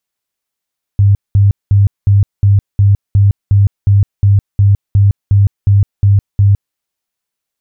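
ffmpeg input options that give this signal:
ffmpeg -f lavfi -i "aevalsrc='0.596*sin(2*PI*100*mod(t,0.36))*lt(mod(t,0.36),16/100)':duration=5.76:sample_rate=44100" out.wav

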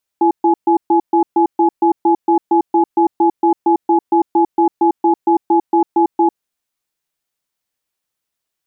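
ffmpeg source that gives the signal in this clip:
ffmpeg -f lavfi -i "aevalsrc='0.266*(sin(2*PI*337*t)+sin(2*PI*845*t))*clip(min(mod(t,0.23),0.1-mod(t,0.23))/0.005,0,1)':duration=6.16:sample_rate=44100" out.wav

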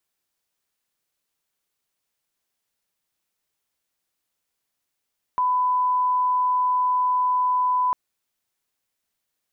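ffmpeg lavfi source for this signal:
ffmpeg -f lavfi -i "sine=frequency=1000:duration=2.55:sample_rate=44100,volume=0.06dB" out.wav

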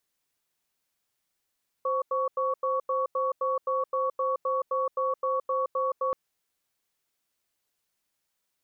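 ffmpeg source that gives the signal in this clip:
ffmpeg -f lavfi -i "aevalsrc='0.0447*(sin(2*PI*523*t)+sin(2*PI*1120*t))*clip(min(mod(t,0.26),0.17-mod(t,0.26))/0.005,0,1)':duration=4.28:sample_rate=44100" out.wav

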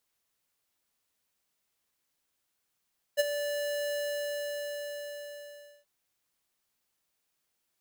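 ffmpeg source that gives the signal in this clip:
ffmpeg -f lavfi -i "aevalsrc='0.0794*(2*lt(mod(582*t,1),0.5)-1)':duration=2.68:sample_rate=44100,afade=type=in:duration=0.029,afade=type=out:start_time=0.029:duration=0.024:silence=0.299,afade=type=out:start_time=0.76:duration=1.92" out.wav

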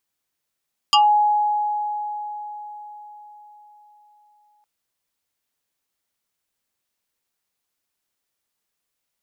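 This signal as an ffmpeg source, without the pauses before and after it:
ffmpeg -f lavfi -i "aevalsrc='0.299*pow(10,-3*t/4.63)*sin(2*PI*837*t+2.8*pow(10,-3*t/0.19)*sin(2*PI*2.39*837*t))':duration=3.71:sample_rate=44100" out.wav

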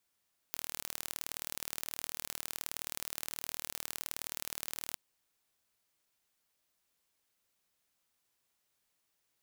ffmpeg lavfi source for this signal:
ffmpeg -f lavfi -i "aevalsrc='0.335*eq(mod(n,1142),0)*(0.5+0.5*eq(mod(n,2284),0))':duration=4.42:sample_rate=44100" out.wav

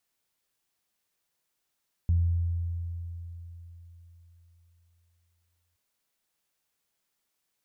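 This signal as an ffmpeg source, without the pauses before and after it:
ffmpeg -f lavfi -i "aevalsrc='0.106*pow(10,-3*t/3.9)*sin(2*PI*85.4*t)+0.0158*pow(10,-3*t/0.73)*sin(2*PI*170.8*t)':duration=3.67:sample_rate=44100" out.wav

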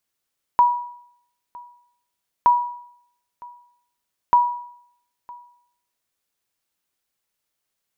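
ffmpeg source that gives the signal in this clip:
ffmpeg -f lavfi -i "aevalsrc='0.398*(sin(2*PI*969*mod(t,1.87))*exp(-6.91*mod(t,1.87)/0.67)+0.0596*sin(2*PI*969*max(mod(t,1.87)-0.96,0))*exp(-6.91*max(mod(t,1.87)-0.96,0)/0.67))':duration=5.61:sample_rate=44100" out.wav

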